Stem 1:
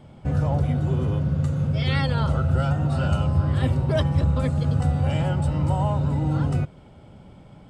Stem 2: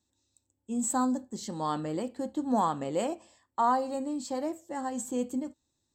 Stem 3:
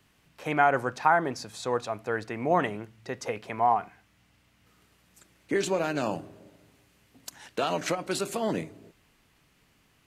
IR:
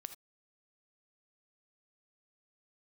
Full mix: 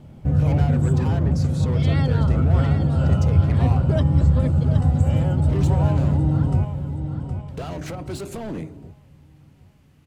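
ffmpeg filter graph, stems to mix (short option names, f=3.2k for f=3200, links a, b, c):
-filter_complex "[0:a]volume=-6.5dB,asplit=2[a][b];[b]volume=-8.5dB[c];[1:a]alimiter=level_in=2dB:limit=-24dB:level=0:latency=1,volume=-2dB,volume=-11dB[d];[2:a]acompressor=threshold=-28dB:ratio=3,asoftclip=type=hard:threshold=-32.5dB,volume=-2dB,asplit=3[e][f][g];[e]atrim=end=6.96,asetpts=PTS-STARTPTS,afade=t=out:st=6.956:d=0.004:c=hsin[h];[f]atrim=start=6.96:end=7.48,asetpts=PTS-STARTPTS,volume=0[i];[g]atrim=start=7.48,asetpts=PTS-STARTPTS,afade=t=in:d=0.004:c=hsin[j];[h][i][j]concat=n=3:v=0:a=1[k];[c]aecho=0:1:767|1534|2301|3068|3835|4602:1|0.41|0.168|0.0689|0.0283|0.0116[l];[a][d][k][l]amix=inputs=4:normalize=0,lowshelf=f=500:g=11.5"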